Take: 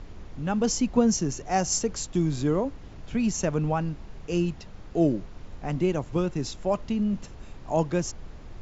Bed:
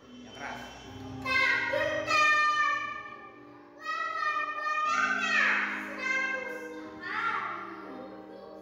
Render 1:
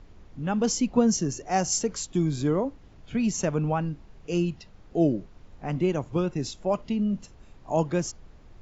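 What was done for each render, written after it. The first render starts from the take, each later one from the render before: noise print and reduce 8 dB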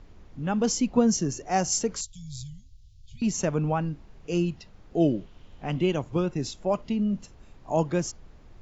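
2.01–3.22 s: inverse Chebyshev band-stop 310–1400 Hz, stop band 60 dB; 5.00–6.02 s: peaking EQ 3.1 kHz +10 dB 0.47 oct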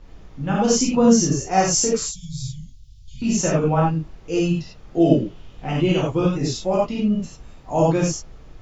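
gated-style reverb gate 120 ms flat, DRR -6.5 dB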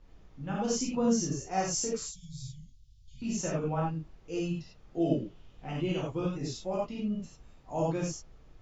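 trim -12.5 dB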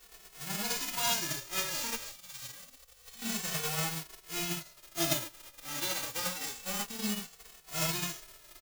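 formants flattened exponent 0.1; endless flanger 2.3 ms -0.27 Hz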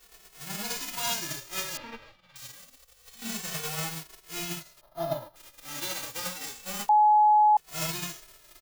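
1.77–2.36 s: distance through air 370 m; 4.81–5.36 s: FFT filter 230 Hz 0 dB, 360 Hz -9 dB, 610 Hz +8 dB, 940 Hz +5 dB, 2.5 kHz -18 dB, 4.1 kHz -11 dB, 7.9 kHz -28 dB, 11 kHz -12 dB; 6.89–7.57 s: bleep 846 Hz -16 dBFS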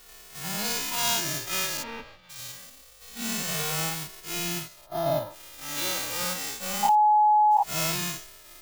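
every event in the spectrogram widened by 120 ms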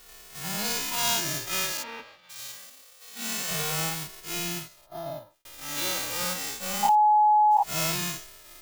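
1.72–3.51 s: high-pass 430 Hz 6 dB/octave; 4.33–5.45 s: fade out linear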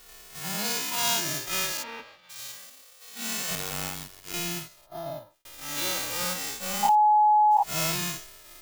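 0.39–1.47 s: high-pass 130 Hz 24 dB/octave; 3.55–4.34 s: AM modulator 94 Hz, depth 90%

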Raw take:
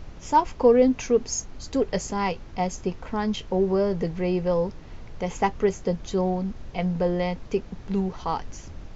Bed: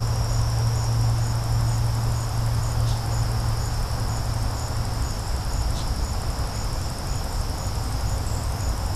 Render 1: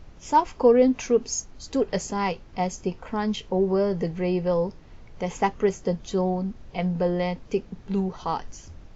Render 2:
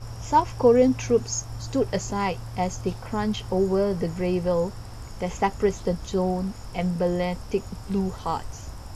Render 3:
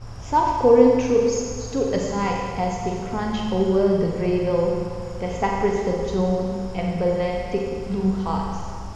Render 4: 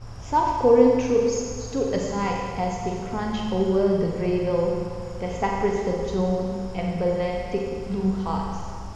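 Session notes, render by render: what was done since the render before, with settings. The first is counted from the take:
noise print and reduce 6 dB
add bed -13.5 dB
distance through air 67 m; Schroeder reverb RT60 2 s, combs from 32 ms, DRR -0.5 dB
trim -2 dB

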